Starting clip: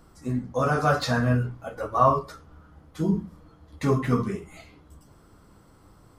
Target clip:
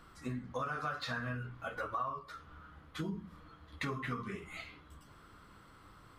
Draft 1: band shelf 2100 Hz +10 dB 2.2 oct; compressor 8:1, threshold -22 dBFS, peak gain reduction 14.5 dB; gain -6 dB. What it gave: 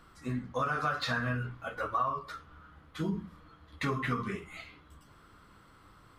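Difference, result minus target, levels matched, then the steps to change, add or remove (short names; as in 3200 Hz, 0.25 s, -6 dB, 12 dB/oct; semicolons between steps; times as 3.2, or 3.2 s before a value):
compressor: peak gain reduction -6.5 dB
change: compressor 8:1, threshold -29.5 dBFS, peak gain reduction 21 dB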